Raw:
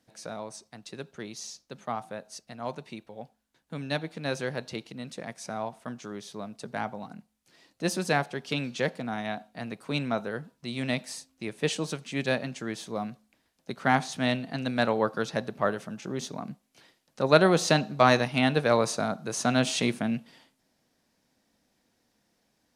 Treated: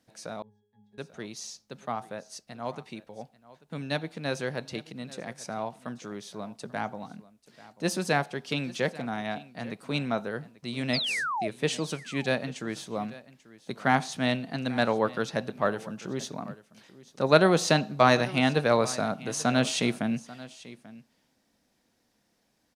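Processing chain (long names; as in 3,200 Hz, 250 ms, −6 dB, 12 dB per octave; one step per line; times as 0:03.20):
0:00.42–0:00.98: resonances in every octave G#, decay 0.55 s
0:10.93–0:11.48: sound drawn into the spectrogram fall 580–5,300 Hz −30 dBFS
single-tap delay 839 ms −19 dB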